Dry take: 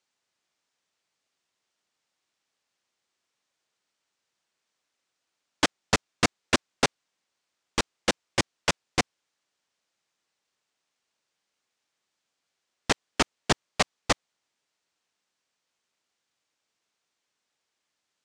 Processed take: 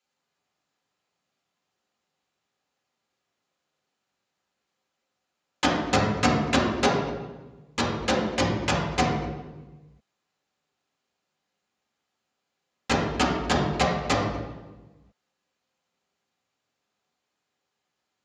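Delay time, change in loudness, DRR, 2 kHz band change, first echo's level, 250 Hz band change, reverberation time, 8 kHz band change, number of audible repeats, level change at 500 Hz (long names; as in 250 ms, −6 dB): no echo audible, +2.5 dB, −5.5 dB, +1.0 dB, no echo audible, +7.0 dB, 1.2 s, −3.5 dB, no echo audible, +5.5 dB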